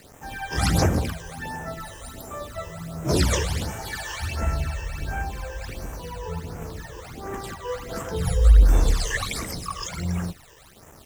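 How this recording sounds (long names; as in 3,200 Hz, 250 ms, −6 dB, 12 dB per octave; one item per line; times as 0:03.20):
a quantiser's noise floor 8 bits, dither none
phaser sweep stages 12, 1.4 Hz, lowest notch 220–4,300 Hz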